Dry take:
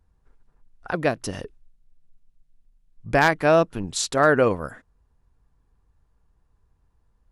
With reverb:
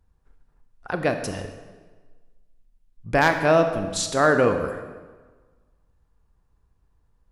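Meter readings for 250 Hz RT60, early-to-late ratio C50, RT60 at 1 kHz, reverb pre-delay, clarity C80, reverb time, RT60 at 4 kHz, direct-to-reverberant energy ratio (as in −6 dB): 1.4 s, 8.0 dB, 1.4 s, 23 ms, 9.5 dB, 1.4 s, 1.1 s, 6.5 dB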